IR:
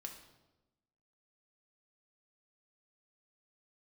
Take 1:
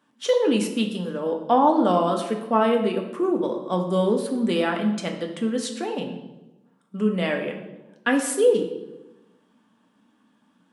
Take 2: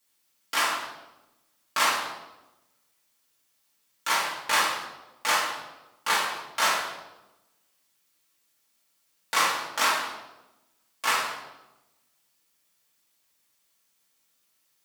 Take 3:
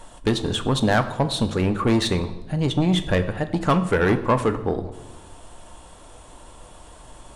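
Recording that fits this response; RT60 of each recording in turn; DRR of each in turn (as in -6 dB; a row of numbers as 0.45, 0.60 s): 1; 1.0, 1.0, 1.0 s; 2.0, -7.0, 8.0 dB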